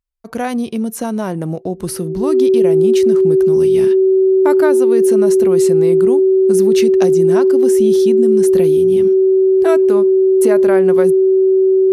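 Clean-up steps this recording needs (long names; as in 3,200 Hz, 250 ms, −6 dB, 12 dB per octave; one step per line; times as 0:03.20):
notch filter 380 Hz, Q 30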